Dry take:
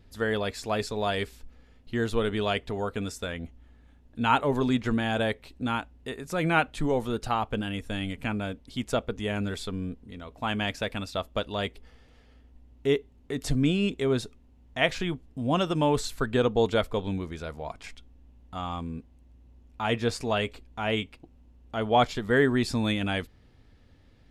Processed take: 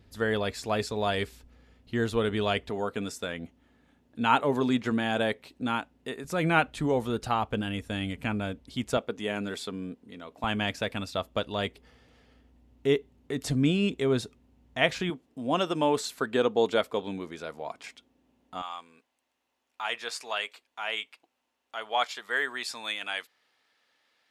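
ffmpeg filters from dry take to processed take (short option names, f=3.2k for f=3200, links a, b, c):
-af "asetnsamples=n=441:p=0,asendcmd='2.69 highpass f 150;6.24 highpass f 55;8.97 highpass f 210;10.44 highpass f 83;15.1 highpass f 250;18.62 highpass f 980',highpass=51"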